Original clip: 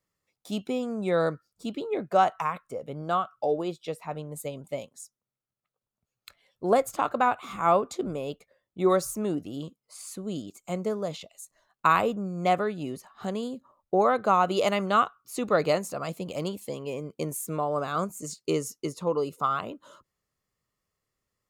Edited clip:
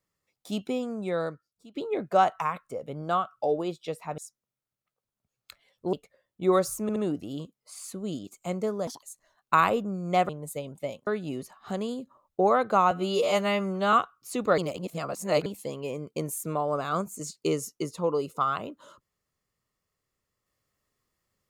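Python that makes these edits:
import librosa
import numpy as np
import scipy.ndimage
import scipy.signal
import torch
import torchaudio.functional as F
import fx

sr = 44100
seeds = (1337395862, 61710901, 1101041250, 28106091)

y = fx.edit(x, sr, fx.fade_out_to(start_s=0.7, length_s=1.05, floor_db=-22.5),
    fx.move(start_s=4.18, length_s=0.78, to_s=12.61),
    fx.cut(start_s=6.71, length_s=1.59),
    fx.stutter(start_s=9.19, slice_s=0.07, count=3),
    fx.speed_span(start_s=11.1, length_s=0.25, speed=1.57),
    fx.stretch_span(start_s=14.45, length_s=0.51, factor=2.0),
    fx.reverse_span(start_s=15.61, length_s=0.88), tone=tone)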